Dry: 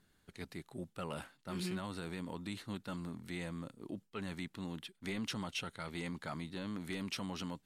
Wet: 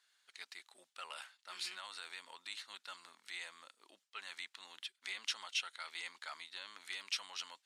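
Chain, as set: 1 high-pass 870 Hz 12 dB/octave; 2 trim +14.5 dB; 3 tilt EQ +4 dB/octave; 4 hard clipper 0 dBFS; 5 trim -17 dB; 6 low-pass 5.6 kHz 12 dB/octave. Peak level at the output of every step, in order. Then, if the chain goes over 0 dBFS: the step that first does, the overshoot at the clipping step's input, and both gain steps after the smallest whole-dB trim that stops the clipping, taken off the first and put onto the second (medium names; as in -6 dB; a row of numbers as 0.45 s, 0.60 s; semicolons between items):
-27.5 dBFS, -13.0 dBFS, -4.0 dBFS, -4.0 dBFS, -21.0 dBFS, -23.5 dBFS; nothing clips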